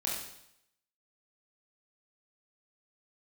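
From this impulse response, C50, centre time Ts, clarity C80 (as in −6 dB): 2.0 dB, 54 ms, 5.5 dB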